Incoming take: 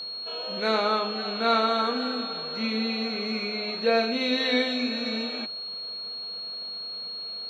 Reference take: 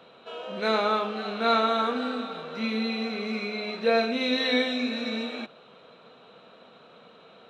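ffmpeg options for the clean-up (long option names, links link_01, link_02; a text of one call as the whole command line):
ffmpeg -i in.wav -af "bandreject=frequency=4300:width=30" out.wav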